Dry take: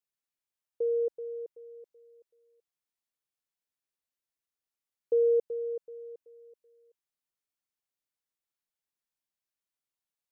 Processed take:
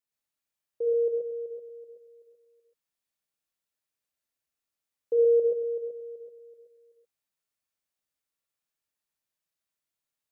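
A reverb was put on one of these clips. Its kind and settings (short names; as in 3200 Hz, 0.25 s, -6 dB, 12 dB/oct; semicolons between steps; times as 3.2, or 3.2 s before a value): non-linear reverb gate 0.15 s rising, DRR -2 dB; gain -1 dB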